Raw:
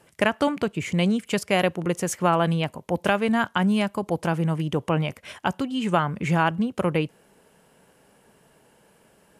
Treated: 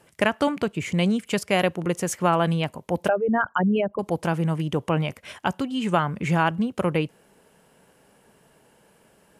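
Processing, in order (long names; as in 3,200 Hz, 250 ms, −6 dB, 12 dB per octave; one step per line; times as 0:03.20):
0:03.08–0:03.99: spectral envelope exaggerated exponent 3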